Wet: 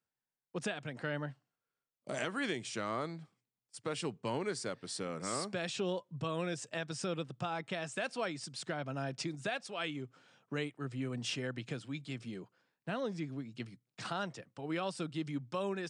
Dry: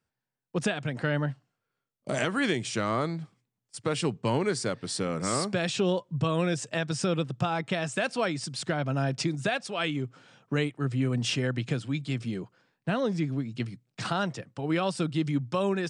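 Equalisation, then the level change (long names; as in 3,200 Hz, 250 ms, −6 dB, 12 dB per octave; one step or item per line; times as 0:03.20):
low-shelf EQ 130 Hz −10.5 dB
−8.0 dB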